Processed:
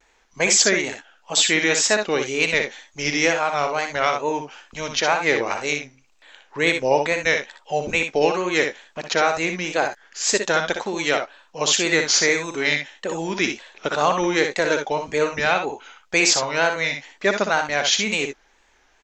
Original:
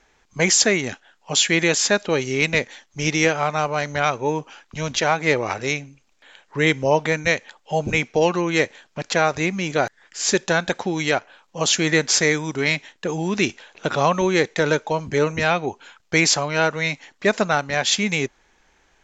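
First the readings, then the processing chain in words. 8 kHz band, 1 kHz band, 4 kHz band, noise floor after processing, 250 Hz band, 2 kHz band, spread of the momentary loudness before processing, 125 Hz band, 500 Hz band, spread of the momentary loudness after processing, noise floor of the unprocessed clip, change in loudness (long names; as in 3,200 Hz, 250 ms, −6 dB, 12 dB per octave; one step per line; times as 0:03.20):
+1.0 dB, +0.5 dB, +1.0 dB, −60 dBFS, −3.5 dB, +1.0 dB, 9 LU, −8.5 dB, −0.5 dB, 10 LU, −62 dBFS, 0.0 dB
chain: parametric band 120 Hz −12 dB 1.7 octaves
tape wow and flutter 110 cents
multi-tap delay 61/75 ms −7/−13.5 dB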